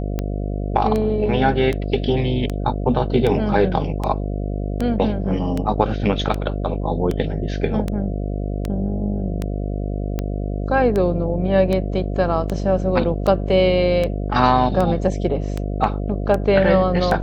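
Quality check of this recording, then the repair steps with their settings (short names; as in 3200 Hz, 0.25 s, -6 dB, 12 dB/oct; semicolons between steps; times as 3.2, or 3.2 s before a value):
buzz 50 Hz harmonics 14 -24 dBFS
tick 78 rpm -11 dBFS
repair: de-click; de-hum 50 Hz, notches 14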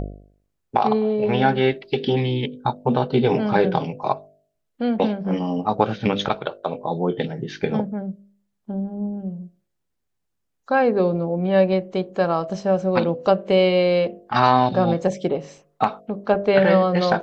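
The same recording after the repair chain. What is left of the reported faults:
none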